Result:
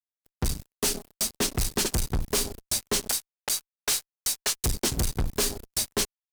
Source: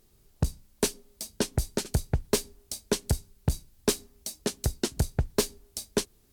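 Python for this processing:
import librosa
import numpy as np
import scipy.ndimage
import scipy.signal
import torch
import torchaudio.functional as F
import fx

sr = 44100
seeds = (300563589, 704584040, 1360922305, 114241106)

y = fx.highpass(x, sr, hz=1200.0, slope=12, at=(3.08, 4.64))
y = fx.fuzz(y, sr, gain_db=44.0, gate_db=-51.0)
y = F.gain(torch.from_numpy(y), -9.0).numpy()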